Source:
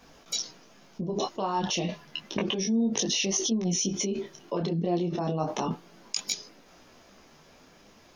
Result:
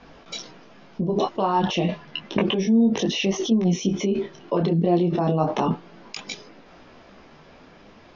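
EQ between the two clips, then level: LPF 6000 Hz 12 dB/oct; dynamic EQ 4600 Hz, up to -6 dB, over -46 dBFS, Q 2.5; air absorption 170 m; +8.0 dB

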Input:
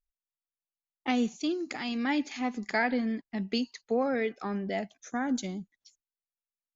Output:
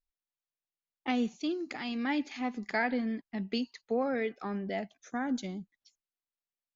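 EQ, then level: LPF 5200 Hz 12 dB/oct; -2.5 dB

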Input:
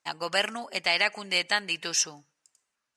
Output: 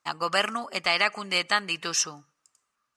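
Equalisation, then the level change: low shelf 290 Hz +5 dB; bell 1200 Hz +13 dB 0.3 oct; 0.0 dB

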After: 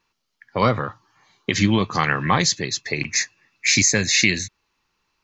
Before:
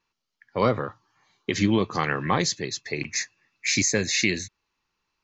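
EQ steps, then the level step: dynamic EQ 400 Hz, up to -7 dB, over -35 dBFS, Q 0.96; +6.5 dB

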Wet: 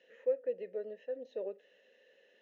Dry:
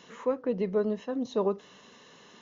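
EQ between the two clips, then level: vowel filter e; HPF 250 Hz 6 dB/oct; 0.0 dB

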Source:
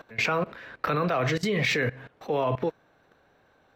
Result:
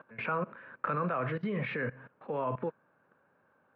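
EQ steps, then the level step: air absorption 65 m; speaker cabinet 170–2100 Hz, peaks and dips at 310 Hz -7 dB, 430 Hz -6 dB, 720 Hz -10 dB, 2000 Hz -9 dB; -2.0 dB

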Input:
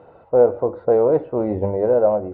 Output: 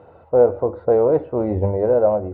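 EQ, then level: bell 84 Hz +9.5 dB 0.53 oct; 0.0 dB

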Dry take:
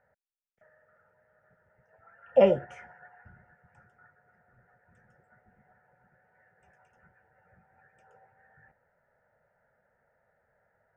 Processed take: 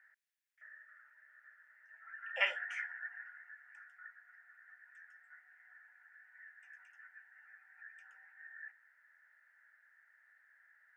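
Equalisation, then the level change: ladder high-pass 1600 Hz, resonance 65%; +12.5 dB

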